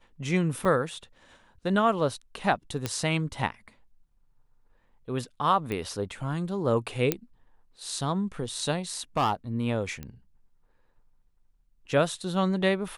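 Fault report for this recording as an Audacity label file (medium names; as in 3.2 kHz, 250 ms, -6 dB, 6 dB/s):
0.650000	0.650000	dropout 4.2 ms
2.860000	2.860000	pop -13 dBFS
5.720000	5.720000	pop -19 dBFS
7.120000	7.120000	pop -8 dBFS
9.170000	9.330000	clipped -19.5 dBFS
10.030000	10.030000	pop -23 dBFS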